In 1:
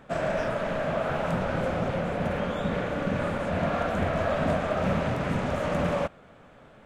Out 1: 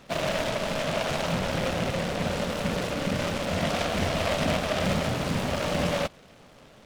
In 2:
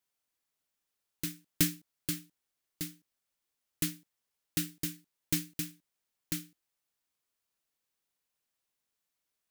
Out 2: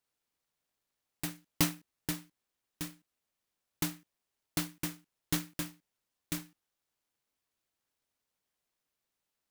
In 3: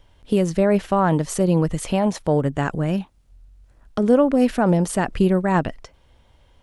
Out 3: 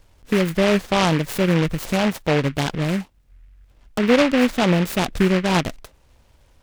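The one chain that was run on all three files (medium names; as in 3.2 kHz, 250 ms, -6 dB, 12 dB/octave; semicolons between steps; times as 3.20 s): delay time shaken by noise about 1.8 kHz, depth 0.13 ms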